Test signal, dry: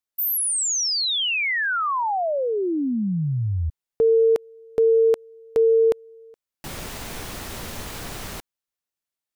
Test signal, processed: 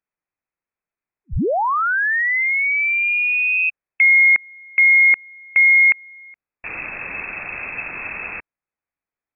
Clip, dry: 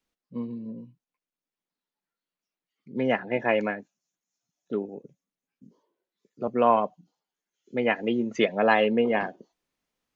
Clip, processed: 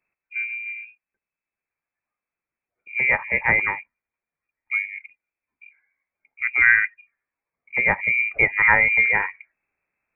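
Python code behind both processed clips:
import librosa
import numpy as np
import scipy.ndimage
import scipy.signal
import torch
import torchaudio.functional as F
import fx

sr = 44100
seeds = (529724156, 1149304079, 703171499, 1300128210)

y = fx.freq_invert(x, sr, carrier_hz=2600)
y = y * 10.0 ** (4.5 / 20.0)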